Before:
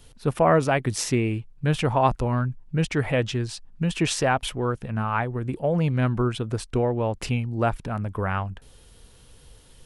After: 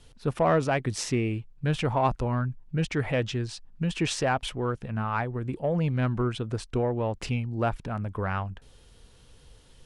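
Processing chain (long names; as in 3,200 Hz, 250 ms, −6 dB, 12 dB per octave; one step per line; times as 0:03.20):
low-pass filter 8,100 Hz 12 dB per octave
in parallel at −3 dB: soft clipping −16 dBFS, distortion −15 dB
on the sum: level −7.5 dB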